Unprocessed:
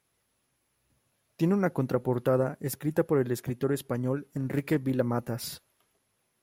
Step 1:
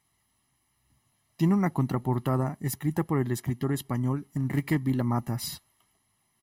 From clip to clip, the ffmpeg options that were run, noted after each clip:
-af "aecho=1:1:1:0.78"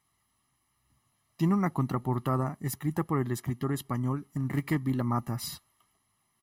-af "equalizer=f=1200:t=o:w=0.27:g=7.5,volume=0.75"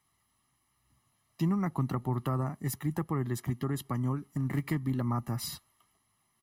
-filter_complex "[0:a]acrossover=split=170[s0][s1];[s1]acompressor=threshold=0.0251:ratio=3[s2];[s0][s2]amix=inputs=2:normalize=0"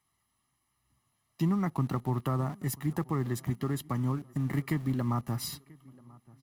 -filter_complex "[0:a]asplit=2[s0][s1];[s1]aeval=exprs='val(0)*gte(abs(val(0)),0.0106)':c=same,volume=0.562[s2];[s0][s2]amix=inputs=2:normalize=0,asplit=2[s3][s4];[s4]adelay=986,lowpass=f=2300:p=1,volume=0.0631,asplit=2[s5][s6];[s6]adelay=986,lowpass=f=2300:p=1,volume=0.42,asplit=2[s7][s8];[s8]adelay=986,lowpass=f=2300:p=1,volume=0.42[s9];[s3][s5][s7][s9]amix=inputs=4:normalize=0,volume=0.708"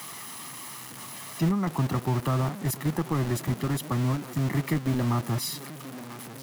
-filter_complex "[0:a]aeval=exprs='val(0)+0.5*0.0168*sgn(val(0))':c=same,acrossover=split=130|4300[s0][s1][s2];[s0]acrusher=bits=5:mix=0:aa=0.000001[s3];[s3][s1][s2]amix=inputs=3:normalize=0,volume=1.26"

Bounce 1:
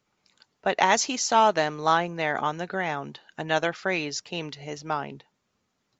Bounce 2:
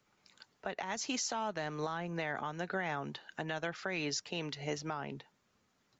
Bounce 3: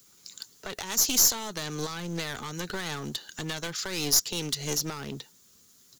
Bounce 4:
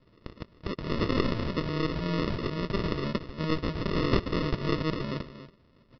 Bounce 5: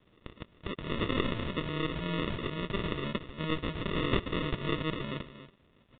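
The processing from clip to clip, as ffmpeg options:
-filter_complex "[0:a]equalizer=f=1600:t=o:w=0.77:g=2.5,acrossover=split=190[s0][s1];[s1]acompressor=threshold=0.0501:ratio=8[s2];[s0][s2]amix=inputs=2:normalize=0,alimiter=level_in=1.19:limit=0.0631:level=0:latency=1:release=371,volume=0.841"
-af "firequalizer=gain_entry='entry(420,0);entry(690,-9);entry(1200,-3);entry(3800,-1);entry(8700,9)':delay=0.05:min_phase=1,aeval=exprs='clip(val(0),-1,0.00596)':c=same,aexciter=amount=1.4:drive=10:freq=3300,volume=2.37"
-af "aecho=1:1:283:0.251,aresample=11025,acrusher=samples=14:mix=1:aa=0.000001,aresample=44100,volume=1.68"
-af "crystalizer=i=4:c=0,acrusher=bits=9:mix=0:aa=0.000001,aresample=8000,aresample=44100,volume=0.596"

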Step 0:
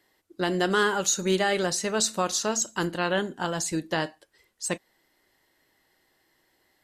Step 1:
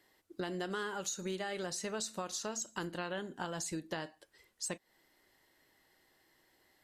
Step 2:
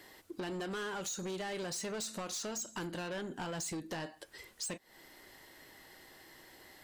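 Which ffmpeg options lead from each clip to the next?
-af "acompressor=threshold=0.0178:ratio=5,volume=0.794"
-af "asoftclip=type=tanh:threshold=0.01,acompressor=threshold=0.00112:ratio=2,volume=4.73"

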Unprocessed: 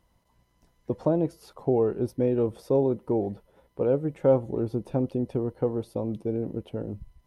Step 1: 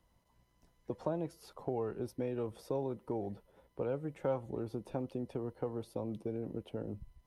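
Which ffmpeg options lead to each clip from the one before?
-filter_complex "[0:a]acrossover=split=200|790|1600[s0][s1][s2][s3];[s0]alimiter=level_in=3.55:limit=0.0631:level=0:latency=1:release=235,volume=0.282[s4];[s1]acompressor=threshold=0.0224:ratio=6[s5];[s4][s5][s2][s3]amix=inputs=4:normalize=0,volume=0.596"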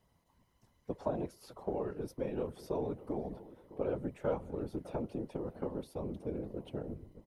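-filter_complex "[0:a]asplit=2[s0][s1];[s1]adelay=605,lowpass=f=2000:p=1,volume=0.158,asplit=2[s2][s3];[s3]adelay=605,lowpass=f=2000:p=1,volume=0.31,asplit=2[s4][s5];[s5]adelay=605,lowpass=f=2000:p=1,volume=0.31[s6];[s0][s2][s4][s6]amix=inputs=4:normalize=0,afftfilt=real='hypot(re,im)*cos(2*PI*random(0))':imag='hypot(re,im)*sin(2*PI*random(1))':win_size=512:overlap=0.75,volume=2"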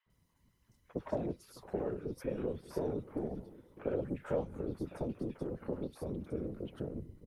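-filter_complex "[0:a]acrossover=split=200|890|4600[s0][s1][s2][s3];[s1]adynamicsmooth=sensitivity=3:basefreq=550[s4];[s0][s4][s2][s3]amix=inputs=4:normalize=0,acrossover=split=1000|3400[s5][s6][s7];[s5]adelay=60[s8];[s7]adelay=100[s9];[s8][s6][s9]amix=inputs=3:normalize=0,volume=1.12"

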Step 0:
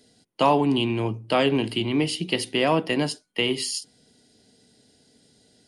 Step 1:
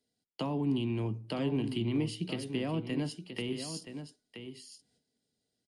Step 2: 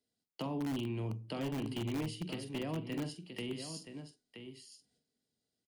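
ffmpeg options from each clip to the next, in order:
-filter_complex "[0:a]agate=range=0.112:threshold=0.002:ratio=16:detection=peak,acrossover=split=300[s0][s1];[s1]acompressor=threshold=0.0158:ratio=4[s2];[s0][s2]amix=inputs=2:normalize=0,aecho=1:1:974:0.335,volume=0.562"
-filter_complex "[0:a]asplit=2[s0][s1];[s1]adelay=45,volume=0.282[s2];[s0][s2]amix=inputs=2:normalize=0,asplit=2[s3][s4];[s4]aeval=exprs='(mod(17.8*val(0)+1,2)-1)/17.8':c=same,volume=0.422[s5];[s3][s5]amix=inputs=2:normalize=0,volume=0.422"

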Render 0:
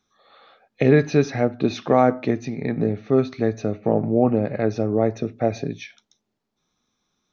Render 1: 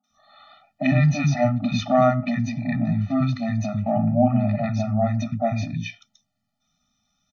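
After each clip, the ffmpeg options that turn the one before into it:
-filter_complex "[0:a]acrossover=split=220|910[s0][s1][s2];[s2]adelay=40[s3];[s0]adelay=100[s4];[s4][s1][s3]amix=inputs=3:normalize=0,afftfilt=real='re*eq(mod(floor(b*sr/1024/290),2),0)':imag='im*eq(mod(floor(b*sr/1024/290),2),0)':win_size=1024:overlap=0.75,volume=1.78"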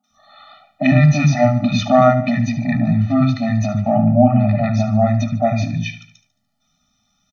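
-af "aecho=1:1:73|146|219|292|365:0.224|0.103|0.0474|0.0218|0.01,volume=2"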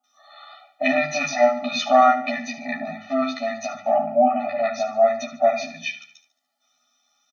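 -filter_complex "[0:a]highpass=f=360:w=0.5412,highpass=f=360:w=1.3066,asplit=2[s0][s1];[s1]adelay=12,volume=0.794[s2];[s0][s2]amix=inputs=2:normalize=0,volume=0.75"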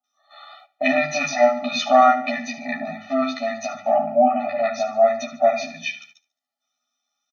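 -af "agate=range=0.251:threshold=0.00398:ratio=16:detection=peak,volume=1.12"

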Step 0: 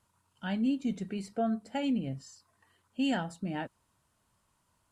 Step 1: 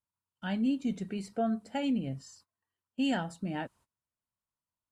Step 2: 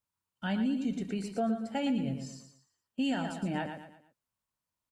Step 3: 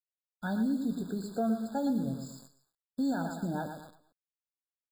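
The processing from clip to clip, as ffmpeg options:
-af "agate=range=0.0708:threshold=0.001:ratio=16:detection=peak"
-filter_complex "[0:a]asplit=2[s0][s1];[s1]aecho=0:1:115|230|345|460:0.398|0.147|0.0545|0.0202[s2];[s0][s2]amix=inputs=2:normalize=0,alimiter=level_in=1.26:limit=0.0631:level=0:latency=1:release=322,volume=0.794,volume=1.41"
-filter_complex "[0:a]asplit=2[s0][s1];[s1]adelay=18,volume=0.2[s2];[s0][s2]amix=inputs=2:normalize=0,acrusher=bits=9:dc=4:mix=0:aa=0.000001,afftfilt=real='re*eq(mod(floor(b*sr/1024/1700),2),0)':imag='im*eq(mod(floor(b*sr/1024/1700),2),0)':win_size=1024:overlap=0.75"

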